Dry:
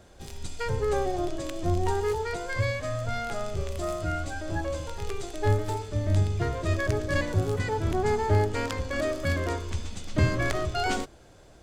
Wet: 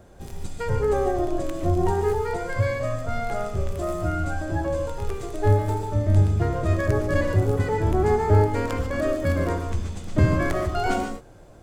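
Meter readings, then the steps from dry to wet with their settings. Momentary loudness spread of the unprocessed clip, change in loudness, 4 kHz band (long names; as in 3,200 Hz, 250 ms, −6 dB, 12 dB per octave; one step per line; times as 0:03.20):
8 LU, +4.5 dB, −4.0 dB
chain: parametric band 4,200 Hz −10 dB 2.5 octaves
reverb whose tail is shaped and stops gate 170 ms rising, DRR 4.5 dB
level +4.5 dB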